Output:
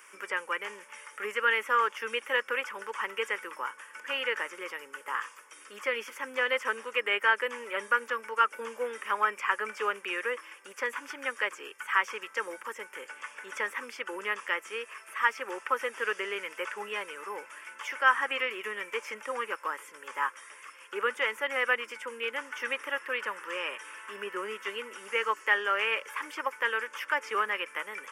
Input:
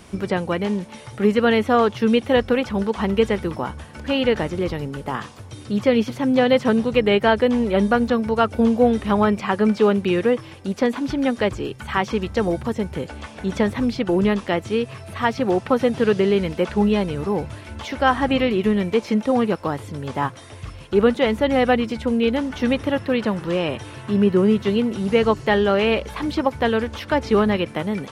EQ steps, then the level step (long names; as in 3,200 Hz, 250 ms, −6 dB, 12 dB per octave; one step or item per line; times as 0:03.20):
high-pass filter 610 Hz 24 dB per octave
phaser with its sweep stopped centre 1,700 Hz, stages 4
0.0 dB